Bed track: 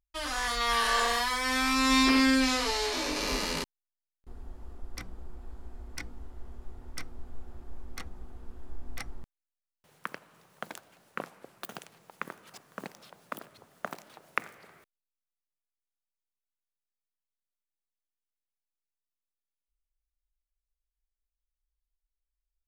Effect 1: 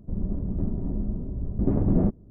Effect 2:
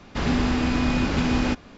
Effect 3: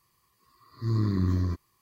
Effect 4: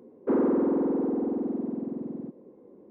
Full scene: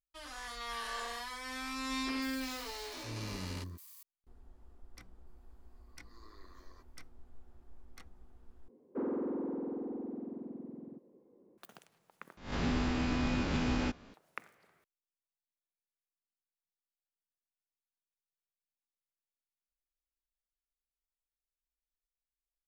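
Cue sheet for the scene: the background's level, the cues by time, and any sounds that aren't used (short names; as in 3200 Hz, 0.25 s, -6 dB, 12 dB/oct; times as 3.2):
bed track -13.5 dB
2.22 add 3 -17.5 dB + switching spikes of -32 dBFS
5.27 add 3 -16.5 dB + HPF 480 Hz 24 dB/oct
8.68 replace with 4 -12 dB
12.37 replace with 2 -11 dB + spectral swells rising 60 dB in 0.41 s
not used: 1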